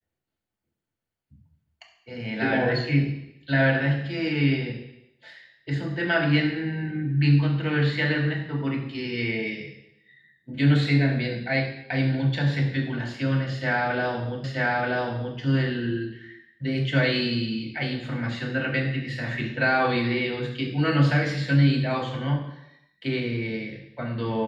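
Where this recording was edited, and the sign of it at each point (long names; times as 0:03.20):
0:14.44: the same again, the last 0.93 s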